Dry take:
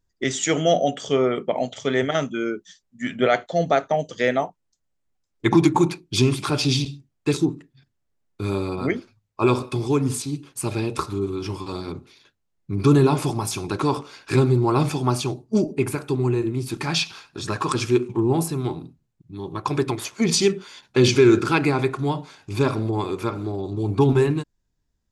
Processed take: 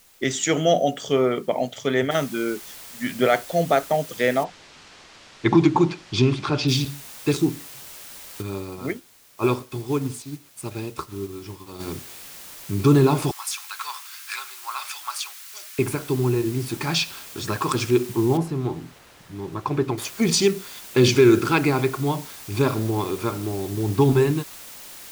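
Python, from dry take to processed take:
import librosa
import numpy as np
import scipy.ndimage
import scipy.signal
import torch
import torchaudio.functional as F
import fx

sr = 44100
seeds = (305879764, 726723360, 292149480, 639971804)

y = fx.noise_floor_step(x, sr, seeds[0], at_s=2.11, before_db=-55, after_db=-41, tilt_db=0.0)
y = fx.bessel_lowpass(y, sr, hz=4300.0, order=4, at=(4.43, 6.67), fade=0.02)
y = fx.upward_expand(y, sr, threshold_db=-37.0, expansion=1.5, at=(8.41, 11.79), fade=0.02)
y = fx.highpass(y, sr, hz=1200.0, slope=24, at=(13.31, 15.79))
y = fx.lowpass(y, sr, hz=1600.0, slope=6, at=(18.37, 19.98))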